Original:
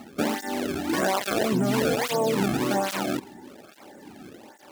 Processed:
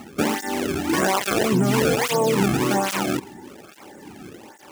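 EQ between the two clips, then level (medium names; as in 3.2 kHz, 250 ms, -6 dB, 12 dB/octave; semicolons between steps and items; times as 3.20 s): fifteen-band graphic EQ 250 Hz -5 dB, 630 Hz -7 dB, 1.6 kHz -3 dB, 4 kHz -5 dB, 16 kHz -4 dB; +7.5 dB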